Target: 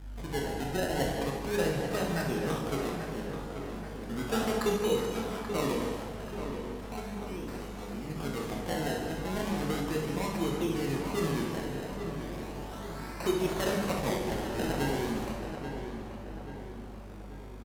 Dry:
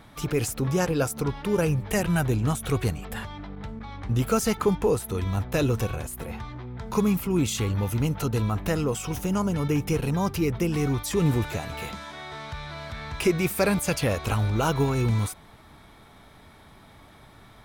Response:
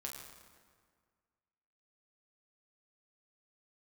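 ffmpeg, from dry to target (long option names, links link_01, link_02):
-filter_complex "[0:a]highpass=frequency=180:width=0.5412,highpass=frequency=180:width=1.3066,asettb=1/sr,asplit=3[link_01][link_02][link_03];[link_01]atrim=end=5.824[link_04];[link_02]atrim=start=5.82:end=8.1,asetpts=PTS-STARTPTS,afade=type=in:duration=0.004:curve=qsin,afade=type=out:start_time=2.276:duration=0.004:curve=qsin,acompressor=threshold=-32dB:ratio=6[link_05];[link_03]atrim=start=8.096[link_06];[link_04][link_05]acrossfade=duration=0.004:curve1=hsin:curve2=qsin[link_07];[link_07][link_06]acrossfade=duration=0.004:curve1=qsin:curve2=hsin,aeval=exprs='val(0)+0.0126*(sin(2*PI*50*n/s)+sin(2*PI*2*50*n/s)/2+sin(2*PI*3*50*n/s)/3+sin(2*PI*4*50*n/s)/4+sin(2*PI*5*50*n/s)/5)':channel_layout=same,acrusher=samples=26:mix=1:aa=0.000001:lfo=1:lforange=26:lforate=0.36,asplit=2[link_08][link_09];[link_09]adelay=834,lowpass=frequency=2900:poles=1,volume=-8dB,asplit=2[link_10][link_11];[link_11]adelay=834,lowpass=frequency=2900:poles=1,volume=0.53,asplit=2[link_12][link_13];[link_13]adelay=834,lowpass=frequency=2900:poles=1,volume=0.53,asplit=2[link_14][link_15];[link_15]adelay=834,lowpass=frequency=2900:poles=1,volume=0.53,asplit=2[link_16][link_17];[link_17]adelay=834,lowpass=frequency=2900:poles=1,volume=0.53,asplit=2[link_18][link_19];[link_19]adelay=834,lowpass=frequency=2900:poles=1,volume=0.53[link_20];[link_08][link_10][link_12][link_14][link_16][link_18][link_20]amix=inputs=7:normalize=0[link_21];[1:a]atrim=start_sample=2205,afade=type=out:start_time=0.32:duration=0.01,atrim=end_sample=14553,asetrate=29988,aresample=44100[link_22];[link_21][link_22]afir=irnorm=-1:irlink=0,volume=-5.5dB"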